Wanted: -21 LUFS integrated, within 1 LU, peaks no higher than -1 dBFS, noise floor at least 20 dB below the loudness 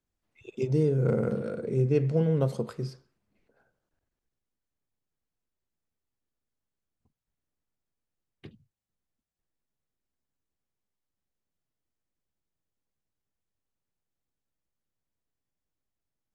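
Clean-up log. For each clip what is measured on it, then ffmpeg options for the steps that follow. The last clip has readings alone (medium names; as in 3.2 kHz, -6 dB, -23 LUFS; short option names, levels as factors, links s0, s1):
loudness -27.5 LUFS; peak level -12.0 dBFS; loudness target -21.0 LUFS
-> -af "volume=2.11"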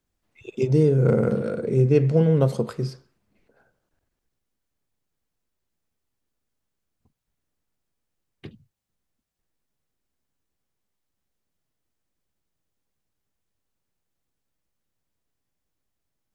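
loudness -21.0 LUFS; peak level -5.5 dBFS; noise floor -81 dBFS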